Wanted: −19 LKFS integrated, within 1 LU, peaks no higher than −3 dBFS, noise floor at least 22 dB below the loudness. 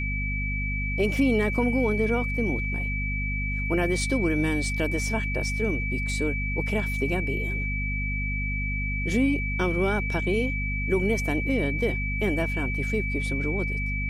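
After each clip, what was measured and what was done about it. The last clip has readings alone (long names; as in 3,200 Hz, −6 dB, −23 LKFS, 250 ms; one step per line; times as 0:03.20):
mains hum 50 Hz; hum harmonics up to 250 Hz; level of the hum −27 dBFS; interfering tone 2,300 Hz; level of the tone −30 dBFS; integrated loudness −26.0 LKFS; sample peak −12.0 dBFS; target loudness −19.0 LKFS
→ mains-hum notches 50/100/150/200/250 Hz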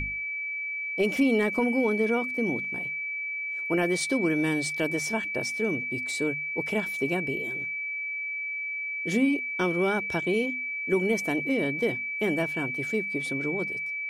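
mains hum none found; interfering tone 2,300 Hz; level of the tone −30 dBFS
→ notch filter 2,300 Hz, Q 30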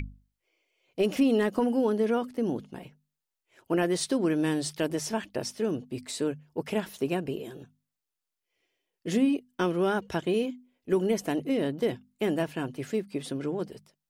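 interfering tone none found; integrated loudness −29.0 LKFS; sample peak −14.5 dBFS; target loudness −19.0 LKFS
→ level +10 dB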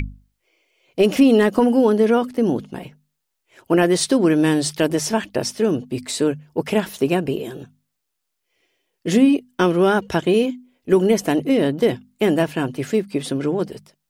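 integrated loudness −19.0 LKFS; sample peak −4.5 dBFS; background noise floor −77 dBFS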